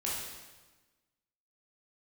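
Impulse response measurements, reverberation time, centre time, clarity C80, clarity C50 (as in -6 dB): 1.2 s, 79 ms, 3.0 dB, -0.5 dB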